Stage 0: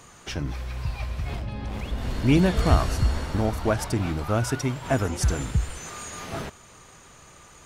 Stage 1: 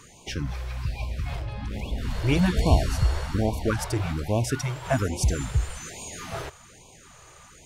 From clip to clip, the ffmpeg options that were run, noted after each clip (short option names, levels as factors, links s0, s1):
-af "afftfilt=real='re*(1-between(b*sr/1024,200*pow(1600/200,0.5+0.5*sin(2*PI*1.2*pts/sr))/1.41,200*pow(1600/200,0.5+0.5*sin(2*PI*1.2*pts/sr))*1.41))':imag='im*(1-between(b*sr/1024,200*pow(1600/200,0.5+0.5*sin(2*PI*1.2*pts/sr))/1.41,200*pow(1600/200,0.5+0.5*sin(2*PI*1.2*pts/sr))*1.41))':win_size=1024:overlap=0.75"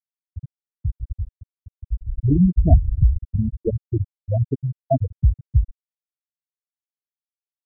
-af "afftfilt=real='re*gte(hypot(re,im),0.447)':imag='im*gte(hypot(re,im),0.447)':win_size=1024:overlap=0.75,volume=2.24"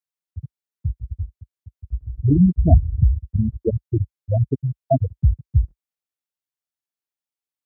-af "highpass=f=55:w=0.5412,highpass=f=55:w=1.3066,volume=1.19"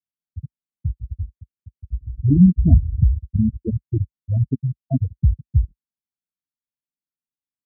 -af "firequalizer=gain_entry='entry(120,0);entry(220,5);entry(520,-18);entry(1100,-12)':delay=0.05:min_phase=1"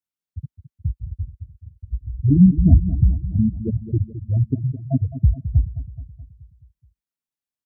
-af "aecho=1:1:213|426|639|852|1065|1278:0.237|0.128|0.0691|0.0373|0.0202|0.0109"